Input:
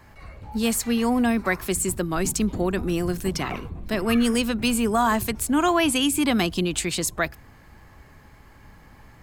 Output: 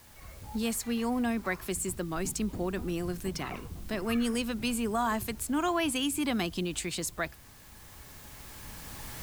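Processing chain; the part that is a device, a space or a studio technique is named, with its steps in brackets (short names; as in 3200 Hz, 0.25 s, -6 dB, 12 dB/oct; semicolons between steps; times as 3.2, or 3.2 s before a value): cheap recorder with automatic gain (white noise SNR 25 dB; recorder AGC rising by 6.8 dB/s); gain -8.5 dB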